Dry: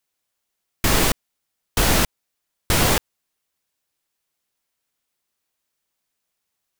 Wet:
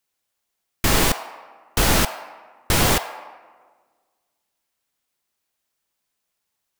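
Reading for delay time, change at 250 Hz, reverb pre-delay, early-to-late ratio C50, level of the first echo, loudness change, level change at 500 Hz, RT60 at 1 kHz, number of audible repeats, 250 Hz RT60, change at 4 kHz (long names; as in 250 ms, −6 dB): no echo audible, 0.0 dB, 3 ms, 10.5 dB, no echo audible, 0.0 dB, 0.0 dB, 1.5 s, no echo audible, 1.8 s, +0.5 dB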